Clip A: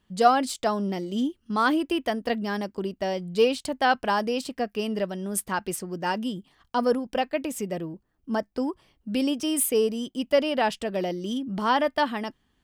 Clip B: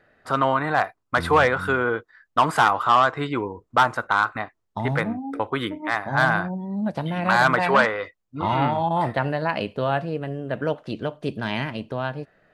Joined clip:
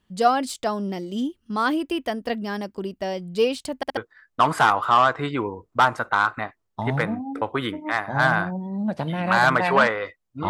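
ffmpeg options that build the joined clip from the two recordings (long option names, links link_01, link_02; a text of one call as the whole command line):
ffmpeg -i cue0.wav -i cue1.wav -filter_complex "[0:a]apad=whole_dur=10.49,atrim=end=10.49,asplit=3[link_01][link_02][link_03];[link_01]atrim=end=3.832[link_04];[link_02]atrim=start=3.758:end=3.832[link_05];[link_03]atrim=start=3.758:end=3.832[link_06];[1:a]atrim=start=1.948:end=8.47[link_07];[link_04][link_05]acrossfade=duration=0.004:curve1=hsin:curve2=hsin[link_08];[link_08][link_06]acrossfade=duration=0.004:curve1=hsin:curve2=hsin[link_09];[link_09][link_07]acrossfade=duration=0.004:curve1=hsin:curve2=hsin" out.wav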